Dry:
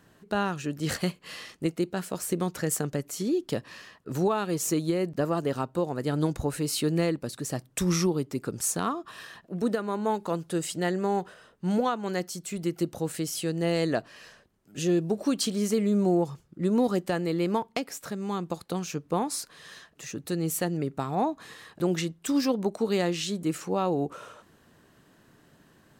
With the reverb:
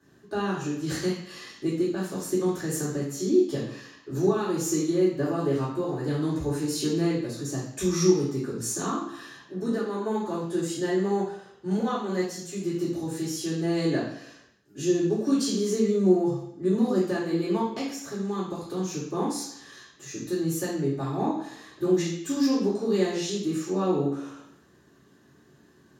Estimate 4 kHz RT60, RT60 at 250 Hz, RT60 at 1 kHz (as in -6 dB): 0.70 s, 0.75 s, 0.70 s